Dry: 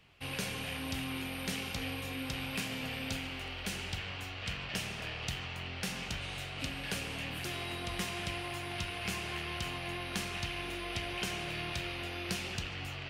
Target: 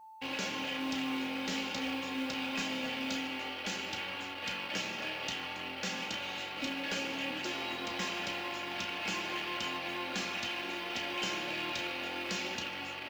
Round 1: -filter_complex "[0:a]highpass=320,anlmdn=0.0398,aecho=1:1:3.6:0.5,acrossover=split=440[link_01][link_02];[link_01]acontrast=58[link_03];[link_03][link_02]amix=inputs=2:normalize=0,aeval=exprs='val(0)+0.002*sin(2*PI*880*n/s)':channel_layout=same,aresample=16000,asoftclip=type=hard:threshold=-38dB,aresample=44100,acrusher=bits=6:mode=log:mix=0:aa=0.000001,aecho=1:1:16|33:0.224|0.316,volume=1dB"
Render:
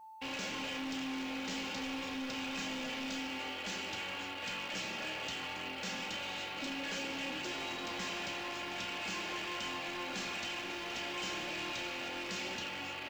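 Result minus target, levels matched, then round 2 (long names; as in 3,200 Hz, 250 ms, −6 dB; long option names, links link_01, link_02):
hard clipping: distortion +11 dB
-filter_complex "[0:a]highpass=320,anlmdn=0.0398,aecho=1:1:3.6:0.5,acrossover=split=440[link_01][link_02];[link_01]acontrast=58[link_03];[link_03][link_02]amix=inputs=2:normalize=0,aeval=exprs='val(0)+0.002*sin(2*PI*880*n/s)':channel_layout=same,aresample=16000,asoftclip=type=hard:threshold=-30.5dB,aresample=44100,acrusher=bits=6:mode=log:mix=0:aa=0.000001,aecho=1:1:16|33:0.224|0.316,volume=1dB"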